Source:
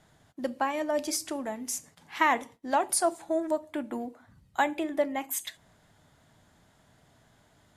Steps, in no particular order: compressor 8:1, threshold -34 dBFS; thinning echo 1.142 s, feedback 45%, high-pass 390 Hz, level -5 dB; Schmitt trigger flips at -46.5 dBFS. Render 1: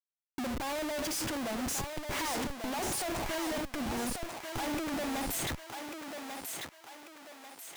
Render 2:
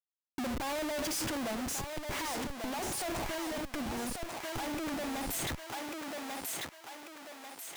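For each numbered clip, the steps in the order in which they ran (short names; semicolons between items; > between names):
Schmitt trigger > compressor > thinning echo; Schmitt trigger > thinning echo > compressor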